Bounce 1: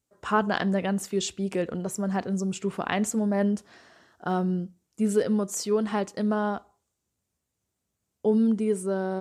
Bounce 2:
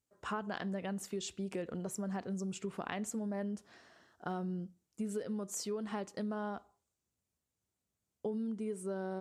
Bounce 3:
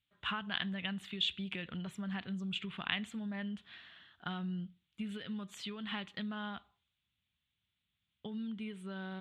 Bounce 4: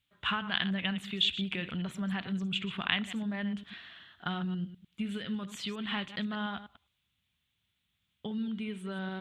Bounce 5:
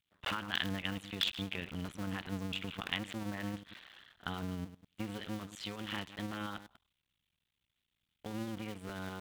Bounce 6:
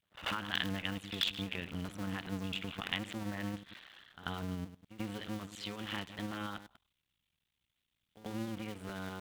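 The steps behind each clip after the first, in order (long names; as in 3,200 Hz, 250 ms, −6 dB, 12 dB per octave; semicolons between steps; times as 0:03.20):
downward compressor, threshold −28 dBFS, peak gain reduction 10.5 dB; level −7 dB
drawn EQ curve 170 Hz 0 dB, 470 Hz −15 dB, 3,500 Hz +15 dB, 5,300 Hz −16 dB; level +1.5 dB
delay that plays each chunk backwards 101 ms, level −12 dB; level +5.5 dB
sub-harmonics by changed cycles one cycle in 2, muted; level −2.5 dB
echo ahead of the sound 89 ms −14.5 dB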